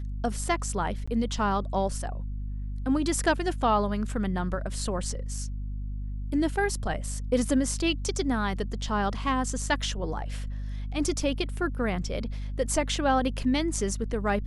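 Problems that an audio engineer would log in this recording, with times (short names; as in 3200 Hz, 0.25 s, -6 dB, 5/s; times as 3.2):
hum 50 Hz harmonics 5 -33 dBFS
1.06–1.07 gap 15 ms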